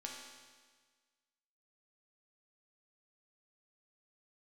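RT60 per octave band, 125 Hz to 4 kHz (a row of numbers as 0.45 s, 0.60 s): 1.6 s, 1.5 s, 1.5 s, 1.5 s, 1.5 s, 1.5 s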